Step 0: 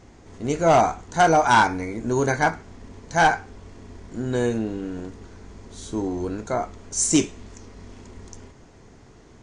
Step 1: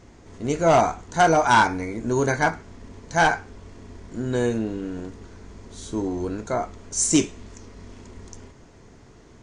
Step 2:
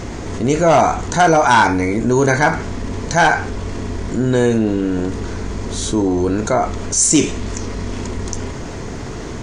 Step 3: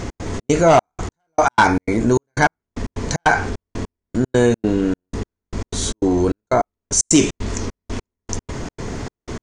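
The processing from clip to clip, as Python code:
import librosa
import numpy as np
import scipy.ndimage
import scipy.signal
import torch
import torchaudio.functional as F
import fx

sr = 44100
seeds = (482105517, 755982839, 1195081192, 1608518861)

y1 = fx.notch(x, sr, hz=780.0, q=20.0)
y2 = fx.env_flatten(y1, sr, amount_pct=50)
y2 = y2 * librosa.db_to_amplitude(4.0)
y3 = fx.step_gate(y2, sr, bpm=152, pattern='x.xx.xxx..x...', floor_db=-60.0, edge_ms=4.5)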